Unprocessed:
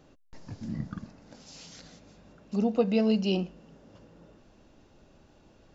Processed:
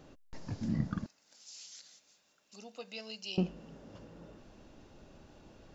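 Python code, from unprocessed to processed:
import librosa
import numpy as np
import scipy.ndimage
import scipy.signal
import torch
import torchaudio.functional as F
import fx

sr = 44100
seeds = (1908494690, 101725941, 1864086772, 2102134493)

y = fx.differentiator(x, sr, at=(1.06, 3.38))
y = F.gain(torch.from_numpy(y), 2.0).numpy()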